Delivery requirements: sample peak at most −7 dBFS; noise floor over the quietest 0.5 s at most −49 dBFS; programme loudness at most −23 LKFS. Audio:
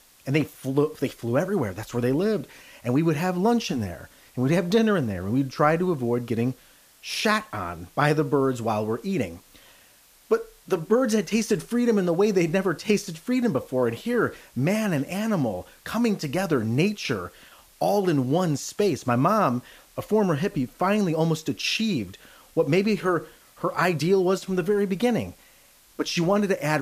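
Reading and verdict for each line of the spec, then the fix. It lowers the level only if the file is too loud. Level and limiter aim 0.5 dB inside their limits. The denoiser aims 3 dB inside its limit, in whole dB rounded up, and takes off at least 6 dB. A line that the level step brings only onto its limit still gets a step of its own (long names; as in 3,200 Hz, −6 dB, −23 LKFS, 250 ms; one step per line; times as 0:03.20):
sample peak −6.0 dBFS: out of spec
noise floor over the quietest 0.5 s −56 dBFS: in spec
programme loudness −24.5 LKFS: in spec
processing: brickwall limiter −7.5 dBFS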